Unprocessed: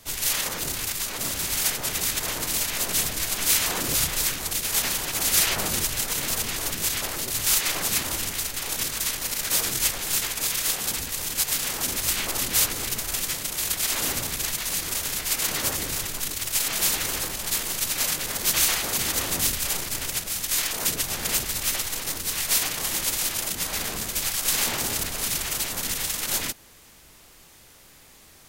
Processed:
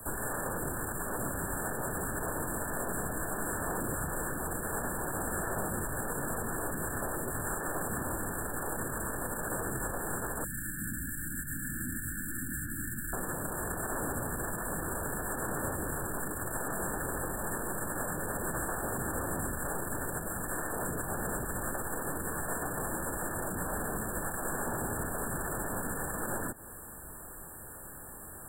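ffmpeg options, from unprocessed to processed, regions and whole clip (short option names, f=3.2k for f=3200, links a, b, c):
-filter_complex "[0:a]asettb=1/sr,asplit=3[a][b][c];[a]atrim=end=10.444[d];[b]atrim=start=10.44:end=13.13,asetpts=PTS-STARTPTS,afade=t=in:d=0.004:c=qsin,afade=t=out:st=2.686:d=0.004:c=qsin,asuperstop=centerf=690:order=12:qfactor=0.55,highshelf=f=9.5k:g=11,acrossover=split=300|2700[e][f][g];[e]acompressor=threshold=-41dB:ratio=4[h];[f]acompressor=threshold=-42dB:ratio=4[i];[g]acompressor=threshold=-22dB:ratio=4[j];[h][i][j]amix=inputs=3:normalize=0[k];[c]atrim=start=13.126[l];[d][k]acrossfade=d=0.004:c1=hsin:c2=qsin[m];[m][l]acrossfade=d=0.004:c1=qsin:c2=hsin,acrossover=split=6200[n][o];[o]acompressor=threshold=-40dB:ratio=4:attack=1:release=60[p];[n][p]amix=inputs=2:normalize=0,afftfilt=real='re*(1-between(b*sr/4096,1800,7300))':imag='im*(1-between(b*sr/4096,1800,7300))':win_size=4096:overlap=0.75,acrossover=split=150|730|3500[q][r][s][t];[q]acompressor=threshold=-47dB:ratio=4[u];[r]acompressor=threshold=-45dB:ratio=4[v];[s]acompressor=threshold=-48dB:ratio=4[w];[t]acompressor=threshold=-47dB:ratio=4[x];[u][v][w][x]amix=inputs=4:normalize=0,volume=7dB"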